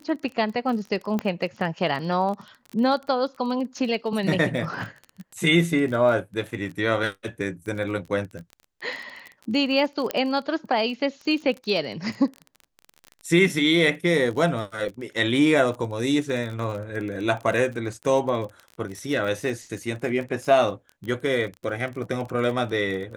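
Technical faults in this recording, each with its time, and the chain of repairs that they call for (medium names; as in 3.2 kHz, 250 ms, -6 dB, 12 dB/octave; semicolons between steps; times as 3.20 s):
crackle 26 per s -31 dBFS
1.19 s: pop -14 dBFS
10.11 s: pop -10 dBFS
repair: de-click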